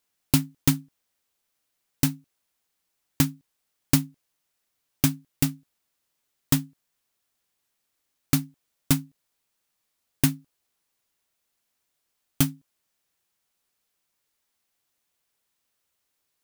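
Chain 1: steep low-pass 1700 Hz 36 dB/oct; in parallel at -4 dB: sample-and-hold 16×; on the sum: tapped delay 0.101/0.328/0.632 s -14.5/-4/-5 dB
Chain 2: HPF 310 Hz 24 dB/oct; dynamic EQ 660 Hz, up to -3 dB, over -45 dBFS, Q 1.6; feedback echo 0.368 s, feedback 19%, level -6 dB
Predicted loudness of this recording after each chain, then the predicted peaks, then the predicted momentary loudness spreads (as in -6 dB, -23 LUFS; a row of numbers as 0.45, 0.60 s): -25.5, -30.5 LUFS; -3.0, -5.0 dBFS; 8, 22 LU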